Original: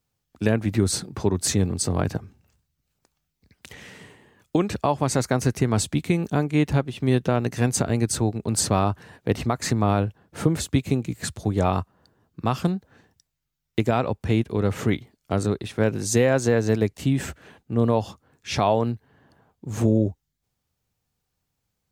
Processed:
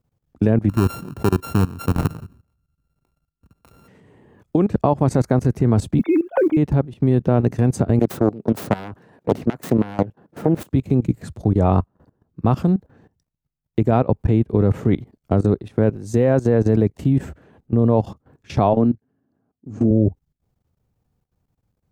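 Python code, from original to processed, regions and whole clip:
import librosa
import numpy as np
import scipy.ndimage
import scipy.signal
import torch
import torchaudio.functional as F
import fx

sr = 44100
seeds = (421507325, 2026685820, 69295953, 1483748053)

y = fx.chain(x, sr, fx.sample_sort(block=32),
    fx.high_shelf(hz=6100.0, db=7.5),
    fx.comb_fb(f0_hz=53.0, decay_s=0.21, harmonics='odd', damping=0.0, mix_pct=40), at=(0.69, 3.88))
y = fx.chain(y, sr, fx.sine_speech(),
    fx.mod_noise(seeds[0], snr_db=32),
    fx.band_squash(depth_pct=70), at=(5.99, 6.57))
y = fx.chain(y, sr, fx.self_delay(depth_ms=0.63),
    fx.highpass(hz=180.0, slope=12), at=(7.99, 10.72))
y = fx.chain(y, sr, fx.cabinet(low_hz=110.0, low_slope=12, high_hz=7000.0, hz=(140.0, 260.0, 510.0, 930.0, 1900.0, 3500.0), db=(-4, 8, -5, -9, -4, -7)),
    fx.upward_expand(threshold_db=-41.0, expansion=1.5), at=(18.73, 19.91))
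y = fx.tilt_shelf(y, sr, db=9.5, hz=1400.0)
y = fx.level_steps(y, sr, step_db=18)
y = fx.high_shelf(y, sr, hz=10000.0, db=4.5)
y = y * 10.0 ** (3.0 / 20.0)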